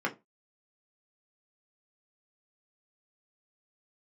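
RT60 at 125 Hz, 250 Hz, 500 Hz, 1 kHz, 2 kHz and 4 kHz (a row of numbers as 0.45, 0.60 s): 0.25, 0.25, 0.25, 0.20, 0.20, 0.15 s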